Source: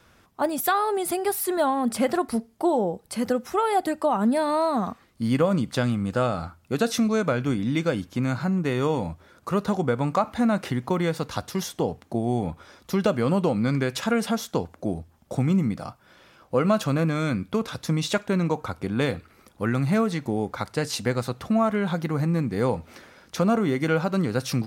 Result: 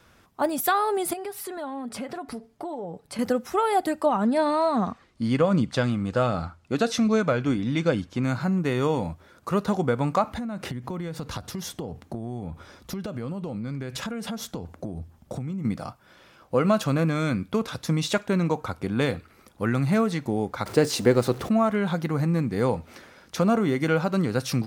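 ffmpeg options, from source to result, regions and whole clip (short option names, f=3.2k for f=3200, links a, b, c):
-filter_complex "[0:a]asettb=1/sr,asplit=3[a][b][c];[a]atrim=end=1.134[d];[b]atrim=start=1.13:end=3.19,asetpts=PTS-STARTPTS,afade=t=in:d=0.004:c=qsin,afade=t=out:st=2.056:d=0.004:c=qsin,highshelf=f=7.8k:g=-11,aecho=1:1:7:0.44,atrim=end_sample=90846,acompressor=threshold=-32dB:ratio=4:attack=3.2:release=140:knee=1:detection=peak[e];[c]atrim=start=3.186[f];[d][e]acrossfade=d=0.004:c1=hsin:c2=qsin[g];[g][f]acrossfade=d=0.004:c1=qsin:c2=hsin,asettb=1/sr,asplit=3[h][i][j];[h]atrim=end=4.064[k];[i]atrim=start=4.06:end=8.24,asetpts=PTS-STARTPTS,afade=t=in:d=0.004:c=qsin,afade=t=out:st=4.176:d=0.004:c=qsin,lowpass=7.4k,aphaser=in_gain=1:out_gain=1:delay=3.6:decay=0.24:speed=1.3:type=triangular[l];[j]atrim=start=8.236[m];[k][l]acrossfade=d=0.004:c1=hsin:c2=qsin[n];[n][m]acrossfade=d=0.004:c1=qsin:c2=hsin,asettb=1/sr,asplit=3[o][p][q];[o]atrim=end=10.304[r];[p]atrim=start=10.3:end=15.65,asetpts=PTS-STARTPTS,afade=t=in:d=0.004:c=qsin,afade=t=out:st=5.346:d=0.004:c=qsin,lowshelf=f=240:g=8,acompressor=threshold=-28dB:ratio=16:attack=3.2:release=140:knee=1:detection=peak[s];[q]atrim=start=15.646[t];[r][s]acrossfade=d=0.004:c1=hsin:c2=qsin[u];[u][t]acrossfade=d=0.004:c1=qsin:c2=hsin,asettb=1/sr,asplit=3[v][w][x];[v]atrim=end=20.664[y];[w]atrim=start=20.66:end=21.49,asetpts=PTS-STARTPTS,afade=t=in:d=0.004:c=qsin,afade=t=out:st=0.826:d=0.004:c=qsin,aeval=exprs='val(0)+0.5*0.0133*sgn(val(0))':c=same,equalizer=f=370:t=o:w=1.2:g=9.5,acompressor=mode=upward:threshold=-34dB:ratio=2.5:attack=3.2:release=140:knee=2.83:detection=peak[z];[x]atrim=start=21.486[aa];[y][z]acrossfade=d=0.004:c1=hsin:c2=qsin[ab];[ab][aa]acrossfade=d=0.004:c1=qsin:c2=hsin"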